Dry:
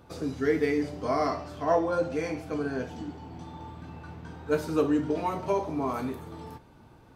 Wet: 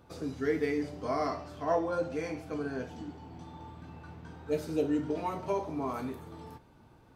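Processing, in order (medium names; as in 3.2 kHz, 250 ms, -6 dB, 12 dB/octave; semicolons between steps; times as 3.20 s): spectral replace 4.52–5.00 s, 780–1700 Hz; trim -4.5 dB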